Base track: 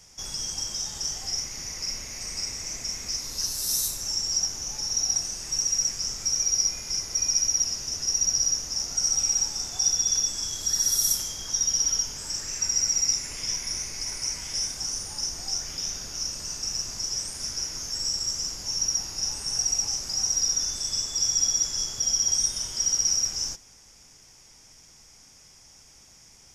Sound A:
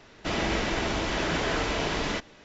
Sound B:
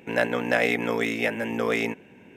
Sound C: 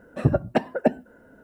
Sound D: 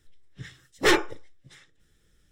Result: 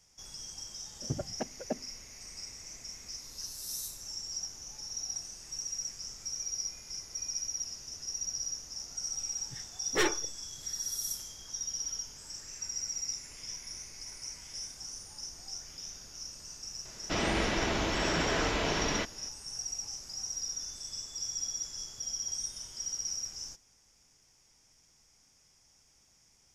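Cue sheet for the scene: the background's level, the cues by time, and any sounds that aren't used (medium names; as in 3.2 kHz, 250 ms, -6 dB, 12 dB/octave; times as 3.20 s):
base track -12.5 dB
0.85 s: add C -15 dB + local Wiener filter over 41 samples
9.12 s: add D -8.5 dB
16.85 s: add A -2.5 dB
not used: B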